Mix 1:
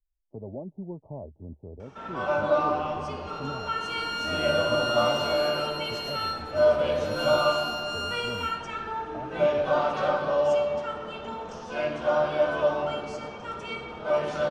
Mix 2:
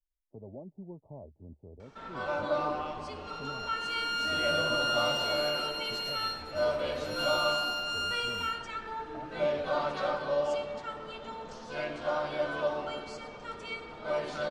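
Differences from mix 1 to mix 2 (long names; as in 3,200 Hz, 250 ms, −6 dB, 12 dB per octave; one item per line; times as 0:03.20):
speech −7.5 dB
reverb: off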